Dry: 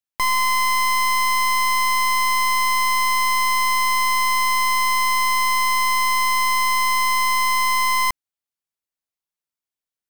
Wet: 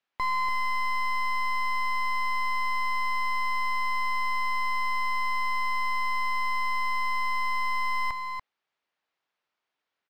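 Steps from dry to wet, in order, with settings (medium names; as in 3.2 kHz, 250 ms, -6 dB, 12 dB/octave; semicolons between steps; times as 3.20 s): distance through air 130 m; overdrive pedal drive 28 dB, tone 2.6 kHz, clips at -18.5 dBFS; peaking EQ 9.9 kHz -7 dB 0.93 oct; delay 288 ms -7 dB; trim -6 dB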